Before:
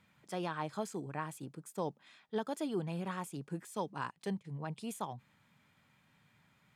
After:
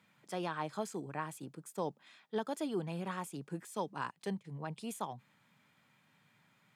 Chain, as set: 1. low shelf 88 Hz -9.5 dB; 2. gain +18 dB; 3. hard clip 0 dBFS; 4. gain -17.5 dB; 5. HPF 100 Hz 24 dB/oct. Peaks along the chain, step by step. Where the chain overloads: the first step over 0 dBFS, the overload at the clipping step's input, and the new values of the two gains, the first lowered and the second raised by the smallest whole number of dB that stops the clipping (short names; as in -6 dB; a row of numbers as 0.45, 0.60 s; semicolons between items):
-23.5, -5.5, -5.5, -23.0, -23.5 dBFS; no overload